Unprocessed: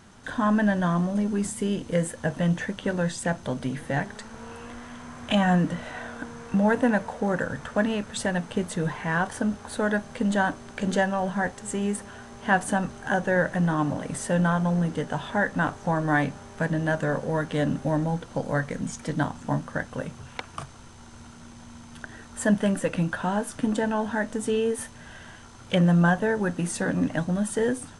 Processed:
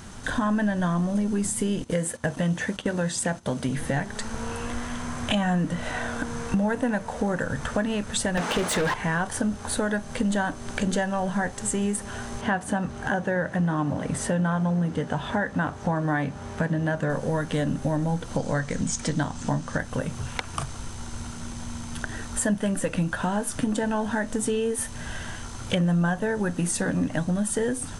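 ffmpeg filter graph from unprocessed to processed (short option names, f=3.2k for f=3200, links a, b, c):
-filter_complex "[0:a]asettb=1/sr,asplit=3[a][b][c];[a]atrim=end=1.844[d];[b]atrim=start=1.84:end=3.69,asetpts=PTS-STARTPTS,afade=t=in:d=0.004:c=qsin,afade=t=out:st=1.846:d=0.004:c=qsin,highpass=f=120:p=1,agate=range=-13dB:threshold=-41dB:ratio=16:release=100:detection=peak[e];[c]atrim=start=3.686[f];[d][e]acrossfade=d=0.004:c1=hsin:c2=qsin[g];[g][f]acrossfade=d=0.004:c1=qsin:c2=hsin,asettb=1/sr,asplit=3[h][i][j];[h]atrim=end=8.374[k];[i]atrim=start=8.37:end=8.94,asetpts=PTS-STARTPTS,afade=t=in:d=0.004:c=qsin,afade=t=out:st=0.566:d=0.004:c=qsin,highpass=f=220:p=1,asplit=2[l][m];[m]highpass=f=720:p=1,volume=27dB,asoftclip=type=tanh:threshold=-15.5dB[n];[l][n]amix=inputs=2:normalize=0,lowpass=f=2.4k:p=1,volume=-6dB[o];[j]atrim=start=8.936[p];[k][o]acrossfade=d=0.004:c1=hsin:c2=qsin[q];[q][p]acrossfade=d=0.004:c1=qsin:c2=hsin,asettb=1/sr,asplit=3[r][s][t];[r]atrim=end=12.414[u];[s]atrim=start=12.41:end=17.1,asetpts=PTS-STARTPTS,afade=t=in:d=0.004:c=qsin,afade=t=out:st=4.686:d=0.004:c=qsin,highpass=44,highshelf=f=5.5k:g=-11.5[v];[t]atrim=start=17.096[w];[u][v]acrossfade=d=0.004:c1=hsin:c2=qsin[x];[x][w]acrossfade=d=0.004:c1=qsin:c2=hsin,asettb=1/sr,asplit=3[y][z][aa];[y]atrim=end=18.384[ab];[z]atrim=start=18.38:end=19.78,asetpts=PTS-STARTPTS,afade=t=in:d=0.004:c=qsin,afade=t=out:st=1.396:d=0.004:c=qsin,lowpass=f=8.9k:w=0.5412,lowpass=f=8.9k:w=1.3066,equalizer=f=6.1k:w=0.6:g=4[ac];[aa]atrim=start=19.776[ad];[ab][ac]acrossfade=d=0.004:c1=hsin:c2=qsin[ae];[ae][ad]acrossfade=d=0.004:c1=qsin:c2=hsin,highshelf=f=6.3k:g=8,acompressor=threshold=-33dB:ratio=3,lowshelf=f=79:g=10.5,volume=7dB"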